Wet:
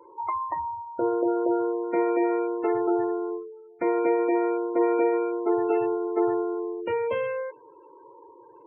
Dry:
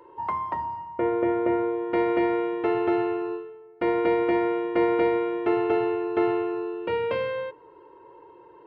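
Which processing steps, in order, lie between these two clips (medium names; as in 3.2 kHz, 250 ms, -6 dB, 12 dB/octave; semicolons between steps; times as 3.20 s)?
spectral gate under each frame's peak -20 dB strong; hum notches 60/120/180/240/300/360/420 Hz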